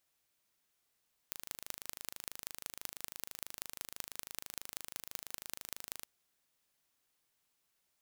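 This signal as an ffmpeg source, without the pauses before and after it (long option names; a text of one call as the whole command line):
ffmpeg -f lavfi -i "aevalsrc='0.282*eq(mod(n,1690),0)*(0.5+0.5*eq(mod(n,8450),0))':duration=4.75:sample_rate=44100" out.wav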